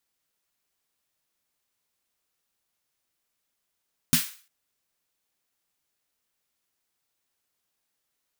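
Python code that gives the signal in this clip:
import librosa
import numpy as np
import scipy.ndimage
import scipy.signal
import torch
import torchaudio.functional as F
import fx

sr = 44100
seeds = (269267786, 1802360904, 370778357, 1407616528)

y = fx.drum_snare(sr, seeds[0], length_s=0.35, hz=160.0, second_hz=240.0, noise_db=0.5, noise_from_hz=1300.0, decay_s=0.13, noise_decay_s=0.4)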